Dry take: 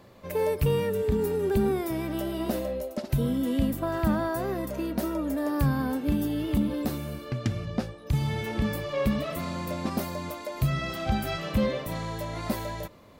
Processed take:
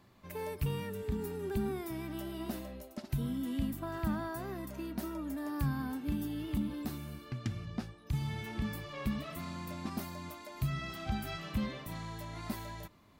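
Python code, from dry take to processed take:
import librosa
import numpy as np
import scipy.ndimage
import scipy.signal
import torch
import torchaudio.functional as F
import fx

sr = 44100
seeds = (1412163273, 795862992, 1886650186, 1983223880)

y = fx.peak_eq(x, sr, hz=520.0, db=-12.0, octaves=0.52)
y = F.gain(torch.from_numpy(y), -8.0).numpy()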